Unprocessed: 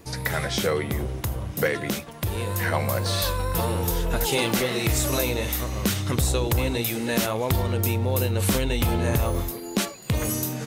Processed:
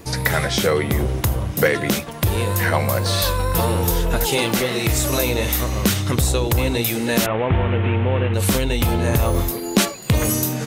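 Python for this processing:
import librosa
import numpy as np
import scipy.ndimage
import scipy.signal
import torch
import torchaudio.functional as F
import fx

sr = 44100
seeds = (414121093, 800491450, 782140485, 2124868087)

y = fx.delta_mod(x, sr, bps=16000, step_db=-28.5, at=(7.26, 8.34))
y = fx.rider(y, sr, range_db=3, speed_s=0.5)
y = F.gain(torch.from_numpy(y), 5.5).numpy()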